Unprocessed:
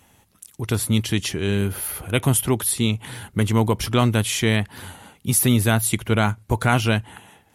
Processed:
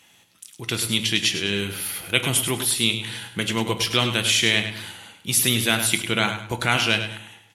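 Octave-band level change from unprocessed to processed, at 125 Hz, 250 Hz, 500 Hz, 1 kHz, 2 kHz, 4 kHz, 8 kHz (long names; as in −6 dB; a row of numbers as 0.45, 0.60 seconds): −9.0, −6.0, −4.0, −3.0, +4.0, +8.0, +0.5 decibels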